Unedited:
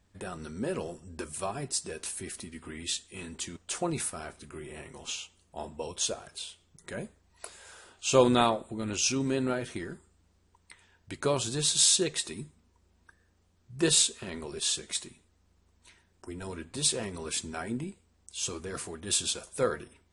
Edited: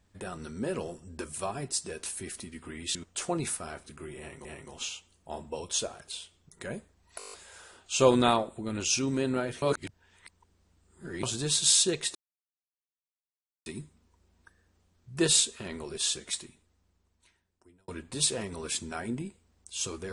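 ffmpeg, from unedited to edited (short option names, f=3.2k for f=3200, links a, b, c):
-filter_complex "[0:a]asplit=14[a][b][c][d][e][f][g][h][i][j][k][l][m][n];[a]atrim=end=2.952[o];[b]atrim=start=3.478:end=4.982[p];[c]atrim=start=4.718:end=7.472[q];[d]atrim=start=7.448:end=7.472[r];[e]atrim=start=7.448:end=7.472[s];[f]atrim=start=7.448:end=7.472[t];[g]atrim=start=7.448:end=7.472[u];[h]atrim=start=7.448:end=7.472[v];[i]atrim=start=7.448:end=7.472[w];[j]atrim=start=7.448:end=9.752[x];[k]atrim=start=9.748:end=11.362,asetpts=PTS-STARTPTS,areverse[y];[l]atrim=start=11.358:end=12.28,asetpts=PTS-STARTPTS,afade=t=out:st=0.918:d=0.004:c=hsin,apad=pad_dur=1.51[z];[m]atrim=start=12.28:end=16.5,asetpts=PTS-STARTPTS,afade=t=in:d=0.004:c=hsin,afade=t=out:st=2.58:d=1.64[aa];[n]atrim=start=16.5,asetpts=PTS-STARTPTS,afade=t=in:d=0.004:c=hsin[ab];[o][p]acrossfade=d=0.004:c1=hsin:c2=hsin[ac];[ac][q]acrossfade=d=0.004:c1=hsin:c2=hsin[ad];[ad][r]acrossfade=d=0.004:c1=hsin:c2=hsin[ae];[ae][s]acrossfade=d=0.004:c1=hsin:c2=hsin[af];[af][t]acrossfade=d=0.004:c1=hsin:c2=hsin[ag];[ag][u]acrossfade=d=0.004:c1=hsin:c2=hsin[ah];[ah][v]acrossfade=d=0.004:c1=hsin:c2=hsin[ai];[ai][w]acrossfade=d=0.004:c1=hsin:c2=hsin[aj];[aj][x]acrossfade=d=0.004:c1=hsin:c2=hsin[ak];[ak][y]acrossfade=d=0.004:c1=hsin:c2=hsin[al];[z][aa][ab]concat=n=3:v=0:a=1[am];[al][am]acrossfade=d=0.004:c1=hsin:c2=hsin"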